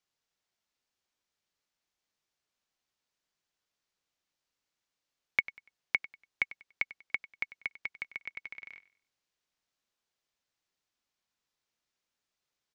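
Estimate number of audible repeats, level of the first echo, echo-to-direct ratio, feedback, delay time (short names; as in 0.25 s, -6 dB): 2, -17.5 dB, -17.0 dB, 30%, 96 ms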